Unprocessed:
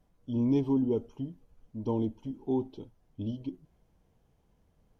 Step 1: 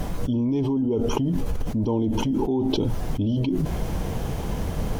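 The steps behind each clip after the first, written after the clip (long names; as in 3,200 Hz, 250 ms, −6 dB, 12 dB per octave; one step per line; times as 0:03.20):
envelope flattener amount 100%
level +1 dB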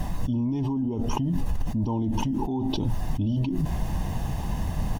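comb filter 1.1 ms, depth 62%
level −4 dB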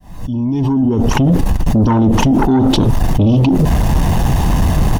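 fade in at the beginning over 1.29 s
harmonic generator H 5 −6 dB, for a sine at −13.5 dBFS
level +7.5 dB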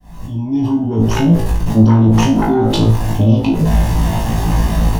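flanger 0.41 Hz, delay 3.8 ms, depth 9.9 ms, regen −58%
on a send: flutter between parallel walls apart 3.1 metres, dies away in 0.38 s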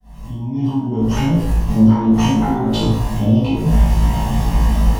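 dense smooth reverb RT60 0.65 s, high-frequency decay 0.8×, DRR −8.5 dB
level −12 dB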